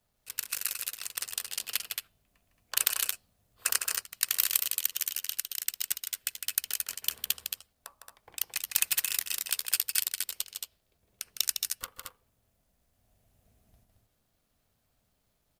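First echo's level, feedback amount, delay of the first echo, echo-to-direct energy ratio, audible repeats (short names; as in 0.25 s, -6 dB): -6.5 dB, no steady repeat, 0.156 s, -2.5 dB, 2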